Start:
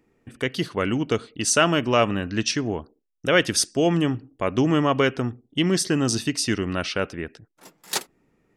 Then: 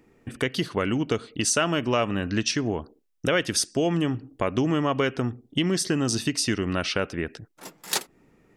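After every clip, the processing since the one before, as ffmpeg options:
ffmpeg -i in.wav -af "acompressor=threshold=-31dB:ratio=2.5,volume=6dB" out.wav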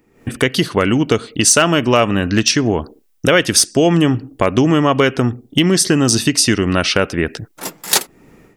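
ffmpeg -i in.wav -af "highshelf=frequency=10000:gain=7.5,aeval=exprs='0.251*(abs(mod(val(0)/0.251+3,4)-2)-1)':channel_layout=same,dynaudnorm=framelen=130:gausssize=3:maxgain=14.5dB" out.wav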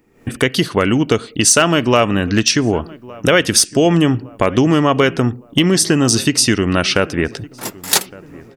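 ffmpeg -i in.wav -filter_complex "[0:a]asplit=2[link_01][link_02];[link_02]adelay=1162,lowpass=frequency=1500:poles=1,volume=-21dB,asplit=2[link_03][link_04];[link_04]adelay=1162,lowpass=frequency=1500:poles=1,volume=0.49,asplit=2[link_05][link_06];[link_06]adelay=1162,lowpass=frequency=1500:poles=1,volume=0.49,asplit=2[link_07][link_08];[link_08]adelay=1162,lowpass=frequency=1500:poles=1,volume=0.49[link_09];[link_01][link_03][link_05][link_07][link_09]amix=inputs=5:normalize=0" out.wav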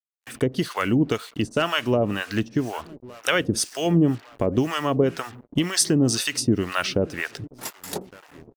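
ffmpeg -i in.wav -filter_complex "[0:a]acrusher=bits=5:mix=0:aa=0.5,acrossover=split=680[link_01][link_02];[link_01]aeval=exprs='val(0)*(1-1/2+1/2*cos(2*PI*2*n/s))':channel_layout=same[link_03];[link_02]aeval=exprs='val(0)*(1-1/2-1/2*cos(2*PI*2*n/s))':channel_layout=same[link_04];[link_03][link_04]amix=inputs=2:normalize=0,volume=-3.5dB" out.wav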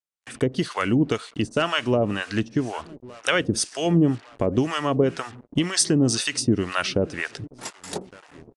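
ffmpeg -i in.wav -af "aresample=22050,aresample=44100" out.wav

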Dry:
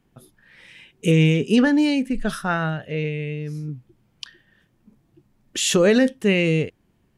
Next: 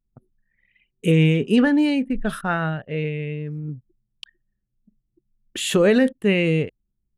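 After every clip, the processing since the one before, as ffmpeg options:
ffmpeg -i in.wav -af "anlmdn=1,equalizer=frequency=5700:width=1.9:gain=-12.5" out.wav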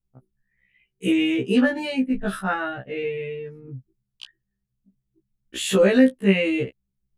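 ffmpeg -i in.wav -af "afftfilt=real='re*1.73*eq(mod(b,3),0)':imag='im*1.73*eq(mod(b,3),0)':win_size=2048:overlap=0.75,volume=1.5dB" out.wav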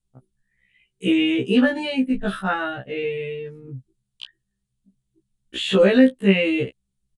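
ffmpeg -i in.wav -filter_complex "[0:a]acrossover=split=4000[link_01][link_02];[link_02]acompressor=threshold=-57dB:ratio=4:attack=1:release=60[link_03];[link_01][link_03]amix=inputs=2:normalize=0,aresample=22050,aresample=44100,aexciter=amount=1.7:drive=5.6:freq=3000,volume=1.5dB" out.wav

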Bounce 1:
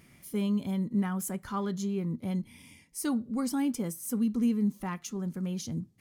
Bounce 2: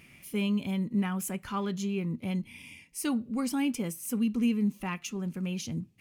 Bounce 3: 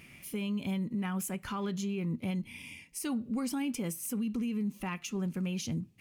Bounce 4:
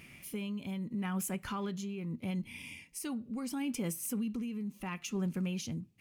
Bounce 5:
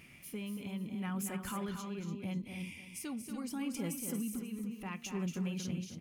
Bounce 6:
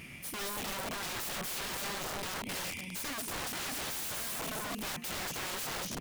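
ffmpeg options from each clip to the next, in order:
ffmpeg -i in.wav -af "equalizer=frequency=2600:width_type=o:width=0.47:gain=13.5" out.wav
ffmpeg -i in.wav -af "alimiter=level_in=4.5dB:limit=-24dB:level=0:latency=1:release=97,volume=-4.5dB,volume=1.5dB" out.wav
ffmpeg -i in.wav -af "tremolo=f=0.76:d=0.48" out.wav
ffmpeg -i in.wav -af "aecho=1:1:233|288|538:0.422|0.335|0.141,volume=-3dB" out.wav
ffmpeg -i in.wav -af "aeval=exprs='(mod(126*val(0)+1,2)-1)/126':channel_layout=same,volume=9dB" out.wav

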